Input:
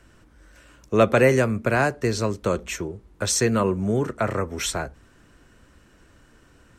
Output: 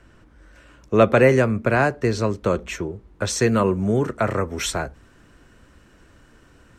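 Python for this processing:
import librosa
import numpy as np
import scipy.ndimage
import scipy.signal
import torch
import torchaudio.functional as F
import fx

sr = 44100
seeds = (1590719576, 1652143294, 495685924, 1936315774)

y = fx.high_shelf(x, sr, hz=5600.0, db=fx.steps((0.0, -11.0), (3.4, -3.5)))
y = F.gain(torch.from_numpy(y), 2.5).numpy()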